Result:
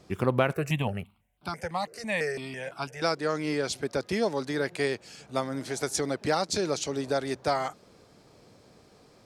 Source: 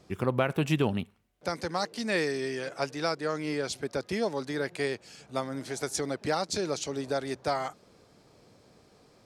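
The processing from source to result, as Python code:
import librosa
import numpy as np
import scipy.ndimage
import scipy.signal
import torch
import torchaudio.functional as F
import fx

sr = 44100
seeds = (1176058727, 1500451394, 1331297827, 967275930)

y = fx.phaser_held(x, sr, hz=6.0, low_hz=900.0, high_hz=1900.0, at=(0.54, 3.02))
y = F.gain(torch.from_numpy(y), 2.5).numpy()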